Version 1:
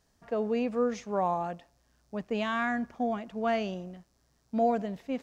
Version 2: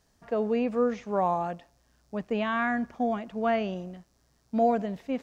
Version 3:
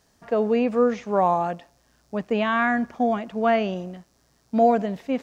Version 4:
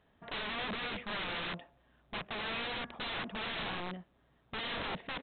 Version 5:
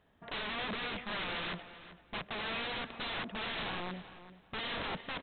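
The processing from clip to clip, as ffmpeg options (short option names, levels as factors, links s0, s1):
-filter_complex "[0:a]acrossover=split=3300[s0][s1];[s1]acompressor=threshold=0.00112:ratio=4:attack=1:release=60[s2];[s0][s2]amix=inputs=2:normalize=0,volume=1.33"
-af "lowshelf=f=81:g=-9,volume=2"
-af "alimiter=limit=0.126:level=0:latency=1:release=18,aresample=8000,aeval=exprs='(mod(28.2*val(0)+1,2)-1)/28.2':c=same,aresample=44100,volume=0.596"
-filter_complex "[0:a]asplit=2[s0][s1];[s1]adelay=386,lowpass=f=3600:p=1,volume=0.211,asplit=2[s2][s3];[s3]adelay=386,lowpass=f=3600:p=1,volume=0.23,asplit=2[s4][s5];[s5]adelay=386,lowpass=f=3600:p=1,volume=0.23[s6];[s0][s2][s4][s6]amix=inputs=4:normalize=0"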